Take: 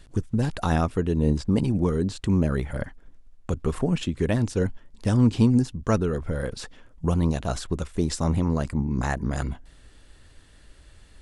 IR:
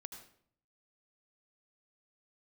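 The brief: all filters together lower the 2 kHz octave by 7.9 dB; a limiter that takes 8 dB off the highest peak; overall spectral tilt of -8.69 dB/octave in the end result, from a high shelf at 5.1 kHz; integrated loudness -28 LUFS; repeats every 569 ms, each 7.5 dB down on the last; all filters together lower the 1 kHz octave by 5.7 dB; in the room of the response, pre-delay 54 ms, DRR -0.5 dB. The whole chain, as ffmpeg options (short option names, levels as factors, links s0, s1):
-filter_complex "[0:a]equalizer=f=1000:t=o:g=-6,equalizer=f=2000:t=o:g=-9,highshelf=f=5100:g=5,alimiter=limit=0.15:level=0:latency=1,aecho=1:1:569|1138|1707|2276|2845:0.422|0.177|0.0744|0.0312|0.0131,asplit=2[s0][s1];[1:a]atrim=start_sample=2205,adelay=54[s2];[s1][s2]afir=irnorm=-1:irlink=0,volume=1.78[s3];[s0][s3]amix=inputs=2:normalize=0,volume=0.668"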